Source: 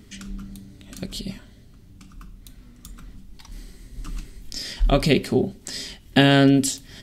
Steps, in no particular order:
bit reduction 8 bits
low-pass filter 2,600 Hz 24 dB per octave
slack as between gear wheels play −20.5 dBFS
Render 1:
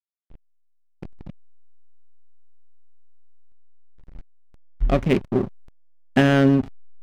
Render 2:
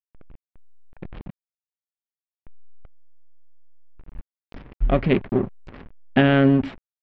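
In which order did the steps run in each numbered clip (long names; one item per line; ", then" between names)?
bit reduction, then low-pass filter, then slack as between gear wheels
slack as between gear wheels, then bit reduction, then low-pass filter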